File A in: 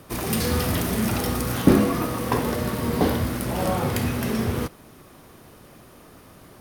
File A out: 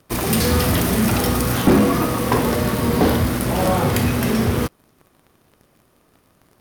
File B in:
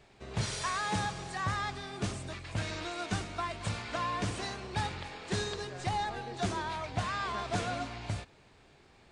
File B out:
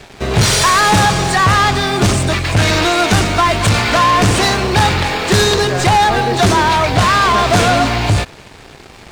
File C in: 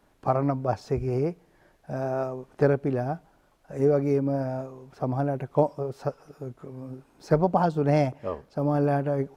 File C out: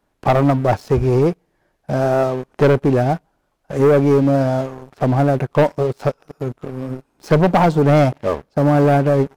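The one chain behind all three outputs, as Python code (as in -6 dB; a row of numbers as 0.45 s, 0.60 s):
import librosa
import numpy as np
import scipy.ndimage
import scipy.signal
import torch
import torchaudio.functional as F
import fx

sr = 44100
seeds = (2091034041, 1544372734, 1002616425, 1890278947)

y = fx.leveller(x, sr, passes=3)
y = librosa.util.normalize(y) * 10.0 ** (-6 / 20.0)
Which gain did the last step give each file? -5.0 dB, +15.5 dB, +1.5 dB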